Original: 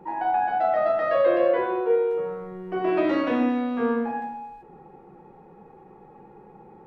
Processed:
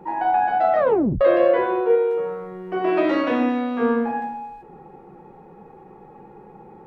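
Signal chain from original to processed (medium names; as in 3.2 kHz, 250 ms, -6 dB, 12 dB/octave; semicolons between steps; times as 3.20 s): 0.79 s: tape stop 0.42 s; 1.95–3.81 s: bass shelf 150 Hz -9 dB; trim +4 dB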